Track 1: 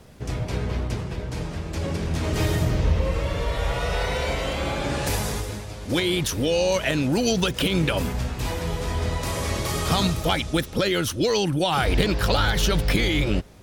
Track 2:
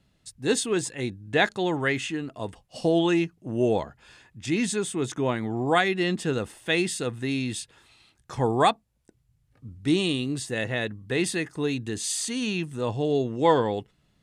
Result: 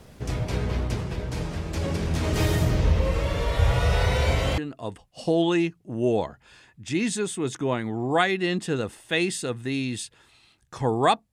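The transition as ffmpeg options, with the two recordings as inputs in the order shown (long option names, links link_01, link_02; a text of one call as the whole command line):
ffmpeg -i cue0.wav -i cue1.wav -filter_complex "[0:a]asettb=1/sr,asplit=3[link_01][link_02][link_03];[link_01]atrim=end=3.594[link_04];[link_02]atrim=start=3.59:end=4.58,asetpts=PTS-STARTPTS,afade=type=in:duration=0.004:curve=qsin,afade=type=out:start_time=0.986:duration=0.004:curve=qsin,equalizer=frequency=96:width=1.7:gain=13.5[link_05];[link_03]atrim=start=4.576[link_06];[link_04][link_05]acrossfade=duration=0.004:curve1=hsin:curve2=qsin[link_07];[link_07][link_06]acrossfade=duration=0.004:curve1=qsin:curve2=hsin,apad=whole_dur=11.32,atrim=end=11.32,atrim=end=4.582[link_08];[1:a]atrim=start=2.148:end=8.89[link_09];[link_08][link_09]acrossfade=duration=0.004:curve1=hsin:curve2=hsin" out.wav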